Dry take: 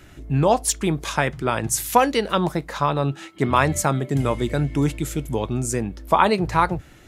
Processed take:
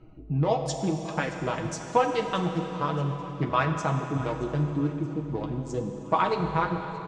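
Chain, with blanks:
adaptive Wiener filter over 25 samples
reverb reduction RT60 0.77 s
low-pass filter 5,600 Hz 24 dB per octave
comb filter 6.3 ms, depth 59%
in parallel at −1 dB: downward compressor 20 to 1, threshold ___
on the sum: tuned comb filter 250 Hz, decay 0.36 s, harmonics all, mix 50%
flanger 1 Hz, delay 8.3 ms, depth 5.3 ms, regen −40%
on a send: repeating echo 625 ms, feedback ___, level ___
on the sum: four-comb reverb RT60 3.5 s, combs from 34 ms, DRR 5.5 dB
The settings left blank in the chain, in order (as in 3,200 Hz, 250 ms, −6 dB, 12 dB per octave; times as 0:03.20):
−26 dBFS, 56%, −19 dB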